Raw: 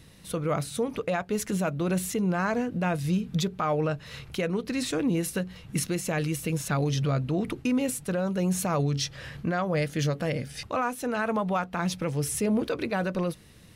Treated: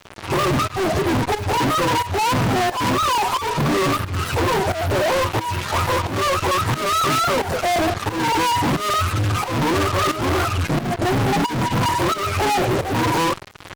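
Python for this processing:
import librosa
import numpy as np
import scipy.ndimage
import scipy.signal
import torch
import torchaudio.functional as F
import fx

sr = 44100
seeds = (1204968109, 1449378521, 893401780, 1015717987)

y = fx.octave_mirror(x, sr, pivot_hz=420.0)
y = fx.fuzz(y, sr, gain_db=53.0, gate_db=-52.0)
y = fx.volume_shaper(y, sr, bpm=89, per_beat=1, depth_db=-13, release_ms=260.0, shape='fast start')
y = y * librosa.db_to_amplitude(-4.5)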